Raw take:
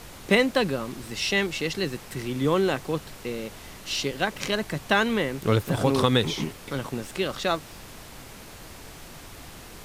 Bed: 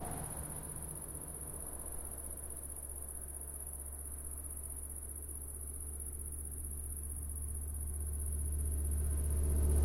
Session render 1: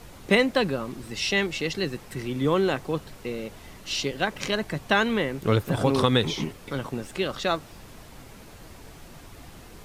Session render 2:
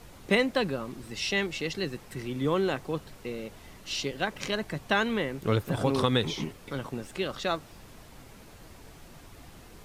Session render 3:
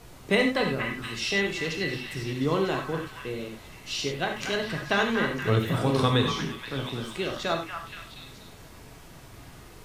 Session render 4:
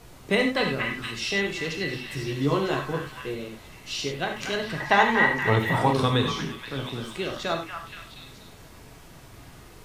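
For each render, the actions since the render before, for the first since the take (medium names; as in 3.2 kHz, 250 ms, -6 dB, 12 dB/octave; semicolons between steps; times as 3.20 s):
noise reduction 6 dB, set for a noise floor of -44 dBFS
trim -4 dB
repeats whose band climbs or falls 237 ms, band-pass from 1.3 kHz, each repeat 0.7 oct, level -4 dB; gated-style reverb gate 120 ms flat, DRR 2.5 dB
0.57–1.11 s: peaking EQ 3.2 kHz +4 dB 2.3 oct; 2.08–3.35 s: doubling 14 ms -4 dB; 4.80–5.93 s: small resonant body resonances 890/1900 Hz, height 16 dB, ringing for 20 ms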